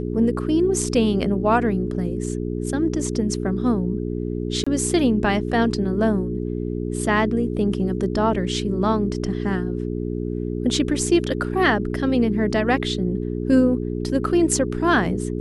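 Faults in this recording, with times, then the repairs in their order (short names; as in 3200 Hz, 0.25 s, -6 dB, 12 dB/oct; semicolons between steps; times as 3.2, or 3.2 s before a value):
hum 60 Hz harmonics 7 -26 dBFS
4.64–4.67 gap 25 ms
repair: de-hum 60 Hz, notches 7; interpolate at 4.64, 25 ms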